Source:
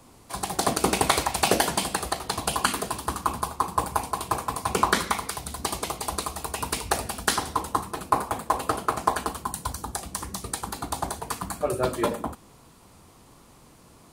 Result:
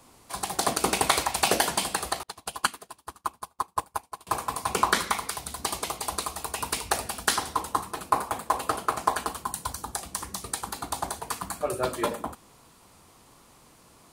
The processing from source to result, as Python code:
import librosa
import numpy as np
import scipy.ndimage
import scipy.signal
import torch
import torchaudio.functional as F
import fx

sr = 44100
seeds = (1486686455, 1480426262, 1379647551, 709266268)

y = fx.low_shelf(x, sr, hz=460.0, db=-6.5)
y = fx.upward_expand(y, sr, threshold_db=-44.0, expansion=2.5, at=(2.23, 4.27))